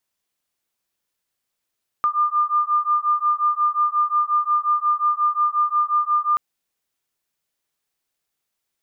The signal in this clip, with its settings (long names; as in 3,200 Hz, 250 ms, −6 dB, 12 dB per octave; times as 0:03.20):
two tones that beat 1,200 Hz, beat 5.6 Hz, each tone −20 dBFS 4.33 s